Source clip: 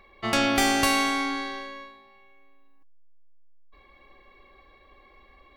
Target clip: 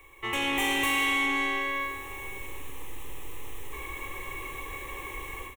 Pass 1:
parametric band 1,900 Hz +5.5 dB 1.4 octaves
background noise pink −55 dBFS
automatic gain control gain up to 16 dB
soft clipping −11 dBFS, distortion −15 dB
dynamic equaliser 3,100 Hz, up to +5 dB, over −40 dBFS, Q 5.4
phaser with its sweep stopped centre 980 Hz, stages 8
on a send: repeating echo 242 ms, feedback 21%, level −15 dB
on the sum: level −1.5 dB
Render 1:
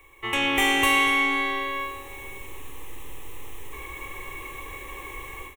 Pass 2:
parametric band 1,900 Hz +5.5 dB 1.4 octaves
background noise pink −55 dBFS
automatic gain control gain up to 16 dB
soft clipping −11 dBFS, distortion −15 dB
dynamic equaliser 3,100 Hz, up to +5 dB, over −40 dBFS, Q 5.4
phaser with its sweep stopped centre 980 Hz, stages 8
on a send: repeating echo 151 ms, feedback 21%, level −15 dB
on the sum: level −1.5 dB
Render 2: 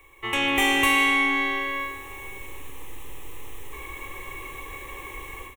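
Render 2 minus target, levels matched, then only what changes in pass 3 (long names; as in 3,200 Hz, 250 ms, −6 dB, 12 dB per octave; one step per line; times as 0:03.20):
soft clipping: distortion −9 dB
change: soft clipping −21 dBFS, distortion −6 dB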